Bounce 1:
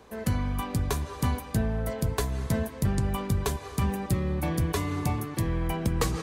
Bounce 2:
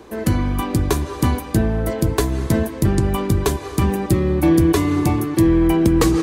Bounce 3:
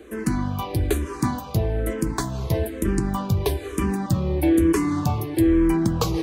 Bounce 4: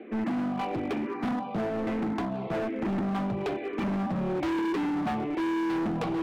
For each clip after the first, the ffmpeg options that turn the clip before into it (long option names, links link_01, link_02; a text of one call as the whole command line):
ffmpeg -i in.wav -af "equalizer=frequency=330:width_type=o:width=0.34:gain=14,volume=8dB" out.wav
ffmpeg -i in.wav -filter_complex "[0:a]asplit=2[link_01][link_02];[link_02]asoftclip=type=tanh:threshold=-21.5dB,volume=-10dB[link_03];[link_01][link_03]amix=inputs=2:normalize=0,asplit=2[link_04][link_05];[link_05]afreqshift=-1.1[link_06];[link_04][link_06]amix=inputs=2:normalize=1,volume=-3dB" out.wav
ffmpeg -i in.wav -af "highpass=frequency=180:width=0.5412,highpass=frequency=180:width=1.3066,equalizer=frequency=220:width_type=q:width=4:gain=9,equalizer=frequency=470:width_type=q:width=4:gain=-3,equalizer=frequency=730:width_type=q:width=4:gain=7,equalizer=frequency=1100:width_type=q:width=4:gain=-5,equalizer=frequency=1600:width_type=q:width=4:gain=-5,equalizer=frequency=2300:width_type=q:width=4:gain=4,lowpass=frequency=2600:width=0.5412,lowpass=frequency=2600:width=1.3066,volume=27dB,asoftclip=hard,volume=-27dB" out.wav